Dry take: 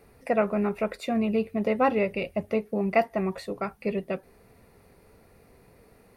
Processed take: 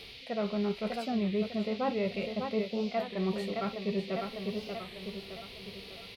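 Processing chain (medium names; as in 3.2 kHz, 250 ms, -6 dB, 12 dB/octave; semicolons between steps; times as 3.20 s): on a send: feedback delay 601 ms, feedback 46%, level -11.5 dB; on the sum: reverse; compression 6:1, threshold -34 dBFS, peak gain reduction 17 dB; reverse; band noise 2.1–4.6 kHz -52 dBFS; harmonic-percussive split harmonic +9 dB; warped record 33 1/3 rpm, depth 160 cents; trim -3 dB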